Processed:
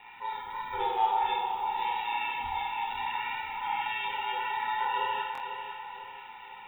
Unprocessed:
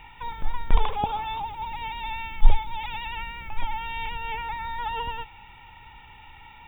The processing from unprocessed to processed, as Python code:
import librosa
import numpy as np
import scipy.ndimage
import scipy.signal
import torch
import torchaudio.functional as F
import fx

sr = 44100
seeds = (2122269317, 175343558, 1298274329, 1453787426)

p1 = fx.hpss_only(x, sr, part='harmonic')
p2 = scipy.signal.sosfilt(scipy.signal.butter(2, 210.0, 'highpass', fs=sr, output='sos'), p1)
p3 = p2 * np.sin(2.0 * np.pi * 56.0 * np.arange(len(p2)) / sr)
p4 = p3 + fx.echo_feedback(p3, sr, ms=494, feedback_pct=45, wet_db=-8, dry=0)
p5 = fx.rev_schroeder(p4, sr, rt60_s=0.59, comb_ms=26, drr_db=-2.0)
y = fx.buffer_glitch(p5, sr, at_s=(5.33,), block=1024, repeats=2)